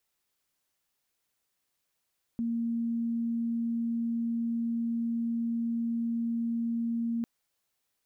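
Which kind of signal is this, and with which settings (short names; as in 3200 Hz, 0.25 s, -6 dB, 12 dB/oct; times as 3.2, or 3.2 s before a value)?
tone sine 232 Hz -27.5 dBFS 4.85 s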